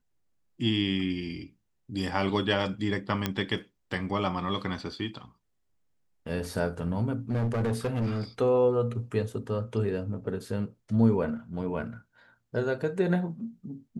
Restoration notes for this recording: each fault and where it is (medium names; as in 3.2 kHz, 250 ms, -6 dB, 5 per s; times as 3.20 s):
3.26 s: pop -12 dBFS
7.30–8.22 s: clipped -24.5 dBFS